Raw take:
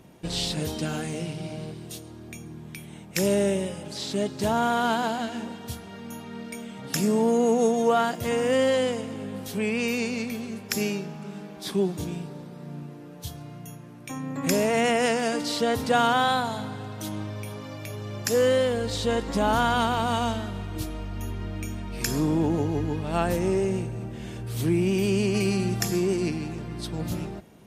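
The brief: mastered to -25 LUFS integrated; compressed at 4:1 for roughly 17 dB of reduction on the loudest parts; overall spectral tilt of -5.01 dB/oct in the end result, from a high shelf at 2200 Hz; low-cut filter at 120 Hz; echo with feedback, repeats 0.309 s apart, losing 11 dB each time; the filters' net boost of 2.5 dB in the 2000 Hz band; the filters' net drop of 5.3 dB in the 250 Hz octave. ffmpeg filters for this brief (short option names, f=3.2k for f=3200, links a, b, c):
-af "highpass=120,equalizer=f=250:t=o:g=-6.5,equalizer=f=2k:t=o:g=7.5,highshelf=f=2.2k:g=-7.5,acompressor=threshold=-40dB:ratio=4,aecho=1:1:309|618|927:0.282|0.0789|0.0221,volume=16.5dB"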